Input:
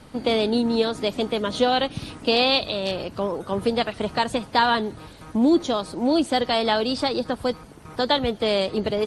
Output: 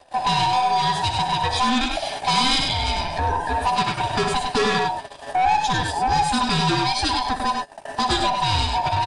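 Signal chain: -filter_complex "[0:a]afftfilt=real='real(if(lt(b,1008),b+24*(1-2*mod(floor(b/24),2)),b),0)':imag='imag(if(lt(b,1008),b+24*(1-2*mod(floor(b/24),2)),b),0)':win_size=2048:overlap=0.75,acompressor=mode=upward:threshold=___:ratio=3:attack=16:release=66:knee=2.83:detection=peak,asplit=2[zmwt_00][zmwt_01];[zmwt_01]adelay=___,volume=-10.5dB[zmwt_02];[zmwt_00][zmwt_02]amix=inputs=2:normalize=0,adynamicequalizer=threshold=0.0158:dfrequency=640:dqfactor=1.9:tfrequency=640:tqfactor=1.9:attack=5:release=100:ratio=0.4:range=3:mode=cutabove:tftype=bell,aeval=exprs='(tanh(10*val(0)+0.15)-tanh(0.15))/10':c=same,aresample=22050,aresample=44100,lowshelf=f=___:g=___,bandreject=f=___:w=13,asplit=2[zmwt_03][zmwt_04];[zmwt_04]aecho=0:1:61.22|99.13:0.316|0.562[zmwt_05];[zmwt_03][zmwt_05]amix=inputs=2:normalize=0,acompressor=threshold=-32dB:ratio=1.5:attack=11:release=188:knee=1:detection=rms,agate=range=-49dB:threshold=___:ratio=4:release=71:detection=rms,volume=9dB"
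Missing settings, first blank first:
-37dB, 12, 390, -4.5, 2000, -36dB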